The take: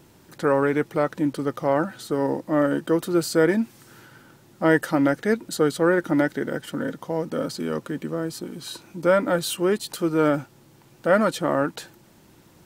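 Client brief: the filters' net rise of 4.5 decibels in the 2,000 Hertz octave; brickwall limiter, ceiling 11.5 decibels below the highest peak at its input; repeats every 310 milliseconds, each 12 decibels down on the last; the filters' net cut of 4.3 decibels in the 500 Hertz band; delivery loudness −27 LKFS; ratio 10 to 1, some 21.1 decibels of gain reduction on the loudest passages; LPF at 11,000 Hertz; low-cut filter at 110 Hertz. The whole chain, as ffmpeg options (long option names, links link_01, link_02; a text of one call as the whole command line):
ffmpeg -i in.wav -af "highpass=110,lowpass=11000,equalizer=frequency=500:width_type=o:gain=-5.5,equalizer=frequency=2000:width_type=o:gain=6.5,acompressor=threshold=-36dB:ratio=10,alimiter=level_in=9.5dB:limit=-24dB:level=0:latency=1,volume=-9.5dB,aecho=1:1:310|620|930:0.251|0.0628|0.0157,volume=17dB" out.wav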